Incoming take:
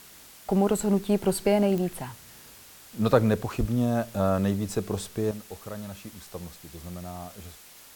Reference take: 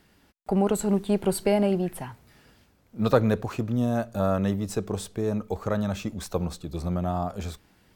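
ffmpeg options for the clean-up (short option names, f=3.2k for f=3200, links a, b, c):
-filter_complex "[0:a]adeclick=t=4,asplit=3[a][b][c];[a]afade=t=out:st=3.59:d=0.02[d];[b]highpass=f=140:w=0.5412,highpass=f=140:w=1.3066,afade=t=in:st=3.59:d=0.02,afade=t=out:st=3.71:d=0.02[e];[c]afade=t=in:st=3.71:d=0.02[f];[d][e][f]amix=inputs=3:normalize=0,afwtdn=0.0035,asetnsamples=n=441:p=0,asendcmd='5.31 volume volume 11dB',volume=0dB"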